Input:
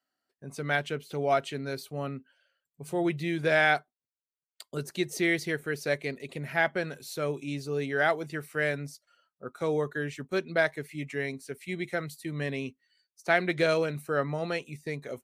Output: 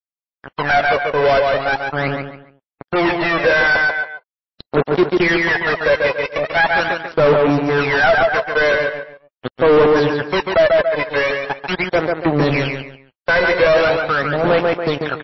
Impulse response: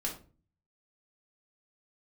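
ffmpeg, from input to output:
-filter_complex "[0:a]asettb=1/sr,asplit=3[link_01][link_02][link_03];[link_01]atrim=end=3.664[link_04];[link_02]atrim=start=3.66:end=5.01,asetpts=PTS-STARTPTS,afade=type=in:duration=0.004:curve=qsin,afade=type=out:start_time=1.346:duration=0.004:curve=qsin,adynamicequalizer=threshold=0.00316:dfrequency=170:dqfactor=2:tfrequency=170:tqfactor=2:attack=5:release=100:ratio=0.375:range=3.5:mode=cutabove:tftype=bell[link_05];[link_03]atrim=start=5.006[link_06];[link_04][link_05]acrossfade=duration=0.004:curve1=hsin:curve2=qsin[link_07];[link_07][link_06]acrossfade=duration=0.004:curve1=qsin:curve2=hsin,acrusher=bits=4:mix=0:aa=0.5,aphaser=in_gain=1:out_gain=1:delay=2:decay=0.72:speed=0.41:type=sinusoidal,asettb=1/sr,asplit=3[link_08][link_09][link_10];[link_08]atrim=end=12.114[link_11];[link_09]atrim=start=12.11:end=12.67,asetpts=PTS-STARTPTS,afade=type=in:duration=0.004:curve=qsin,afade=type=out:start_time=0.556:duration=0.004:curve=qsin,lowshelf=frequency=79:gain=8[link_12];[link_10]atrim=start=12.666[link_13];[link_11][link_12]acrossfade=duration=0.004:curve1=hsin:curve2=qsin[link_14];[link_14][link_13]acrossfade=duration=0.004:curve1=qsin:curve2=hsin,asplit=2[link_15][link_16];[link_16]adelay=141,lowpass=frequency=3900:poles=1,volume=-8.5dB,asplit=2[link_17][link_18];[link_18]adelay=141,lowpass=frequency=3900:poles=1,volume=0.27,asplit=2[link_19][link_20];[link_20]adelay=141,lowpass=frequency=3900:poles=1,volume=0.27[link_21];[link_15][link_17][link_19][link_21]amix=inputs=4:normalize=0,asettb=1/sr,asplit=3[link_22][link_23][link_24];[link_22]atrim=end=13.964[link_25];[link_23]atrim=start=13.96:end=14.44,asetpts=PTS-STARTPTS,afade=type=in:duration=0.004:curve=qsin,afade=type=out:start_time=0.476:duration=0.004:curve=qsin,acompressor=threshold=-31dB:ratio=3[link_26];[link_24]atrim=start=14.436[link_27];[link_25][link_26]acrossfade=duration=0.004:curve1=hsin:curve2=qsin[link_28];[link_28][link_27]acrossfade=duration=0.004:curve1=qsin:curve2=hsin,asplit=2[link_29][link_30];[link_30]highpass=frequency=720:poles=1,volume=30dB,asoftclip=type=tanh:threshold=-5dB[link_31];[link_29][link_31]amix=inputs=2:normalize=0,lowpass=frequency=1200:poles=1,volume=-6dB,volume=1.5dB" -ar 16000 -c:a libmp3lame -b:a 24k

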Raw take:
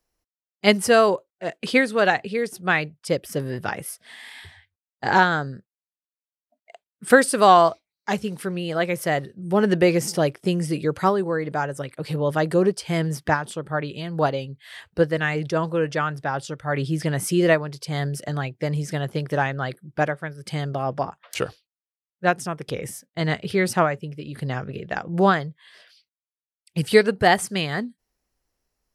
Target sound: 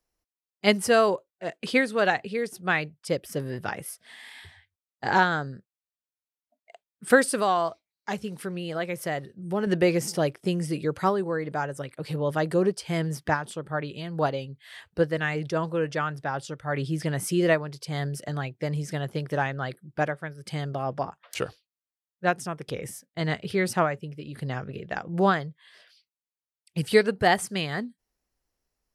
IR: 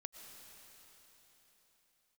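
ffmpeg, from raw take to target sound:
-filter_complex "[0:a]asettb=1/sr,asplit=3[link_01][link_02][link_03];[link_01]atrim=end=7.394[link_04];[link_02]atrim=start=7.39:end=9.67,asetpts=PTS-STARTPTS,afade=type=in:duration=0.004:curve=qsin,afade=type=out:start_time=2.276:duration=0.004:curve=qsin,acompressor=threshold=-27dB:ratio=1.5[link_05];[link_03]atrim=start=9.666[link_06];[link_04][link_05]acrossfade=duration=0.004:curve1=hsin:curve2=qsin[link_07];[link_07][link_06]acrossfade=duration=0.004:curve1=qsin:curve2=hsin,volume=-4dB"

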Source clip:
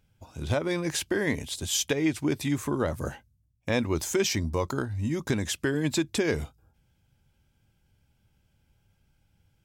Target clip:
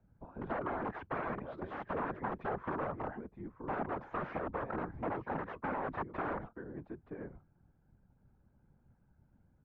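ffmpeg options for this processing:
ffmpeg -i in.wav -filter_complex "[0:a]asplit=2[link_01][link_02];[link_02]aecho=0:1:926:0.141[link_03];[link_01][link_03]amix=inputs=2:normalize=0,aeval=exprs='(mod(14.1*val(0)+1,2)-1)/14.1':channel_layout=same,lowpass=frequency=1400:width=0.5412,lowpass=frequency=1400:width=1.3066,acrossover=split=150[link_04][link_05];[link_04]acompressor=threshold=-52dB:ratio=6[link_06];[link_06][link_05]amix=inputs=2:normalize=0,afftfilt=real='hypot(re,im)*cos(2*PI*random(0))':imag='hypot(re,im)*sin(2*PI*random(1))':win_size=512:overlap=0.75,acrossover=split=230|540[link_07][link_08][link_09];[link_07]acompressor=threshold=-50dB:ratio=4[link_10];[link_08]acompressor=threshold=-51dB:ratio=4[link_11];[link_09]acompressor=threshold=-42dB:ratio=4[link_12];[link_10][link_11][link_12]amix=inputs=3:normalize=0,volume=6dB" out.wav

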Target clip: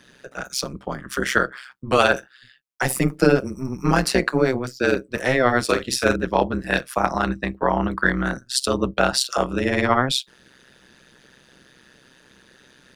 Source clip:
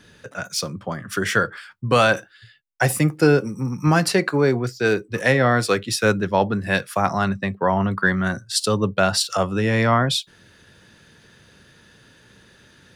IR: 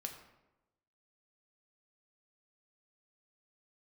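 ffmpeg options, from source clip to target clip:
-filter_complex "[0:a]highpass=frequency=150:width=0.5412,highpass=frequency=150:width=1.3066,tremolo=f=130:d=0.947,asettb=1/sr,asplit=3[link_01][link_02][link_03];[link_01]atrim=end=5.644[link_04];[link_02]atrim=start=5.64:end=6.16,asetpts=PTS-STARTPTS,afade=type=in:duration=0.004:curve=qsin,afade=type=out:start_time=0.516:duration=0.004:curve=qsin,asplit=2[link_05][link_06];[link_06]adelay=48,volume=-10dB[link_07];[link_05][link_07]amix=inputs=2:normalize=0,atrim=end_sample=22932[link_08];[link_03]atrim=start=6.156[link_09];[link_04][link_08]acrossfade=duration=0.004:curve1=hsin:curve2=qsin[link_10];[link_10][link_09]acrossfade=duration=0.004:curve1=qsin:curve2=hsin,volume=3.5dB"

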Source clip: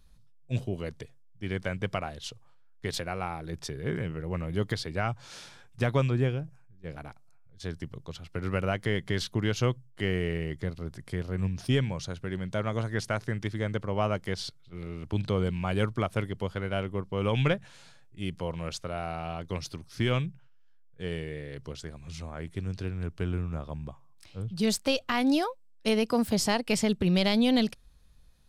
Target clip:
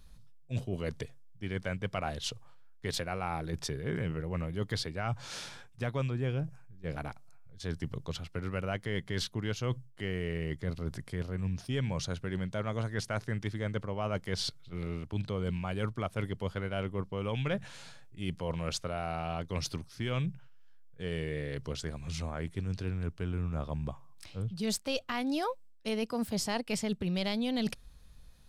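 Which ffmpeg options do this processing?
ffmpeg -i in.wav -af "areverse,acompressor=threshold=-34dB:ratio=6,areverse,equalizer=frequency=350:width_type=o:width=0.23:gain=-2.5,volume=4dB" out.wav

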